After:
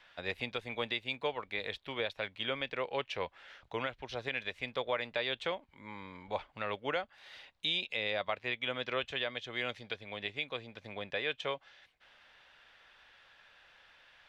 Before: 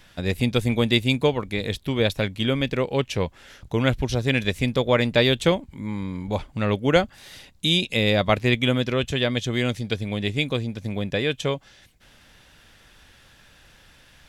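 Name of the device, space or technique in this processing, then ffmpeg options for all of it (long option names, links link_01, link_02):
DJ mixer with the lows and highs turned down: -filter_complex "[0:a]acrossover=split=520 4100:gain=0.112 1 0.0708[link_01][link_02][link_03];[link_01][link_02][link_03]amix=inputs=3:normalize=0,alimiter=limit=-17.5dB:level=0:latency=1:release=406,volume=-4.5dB"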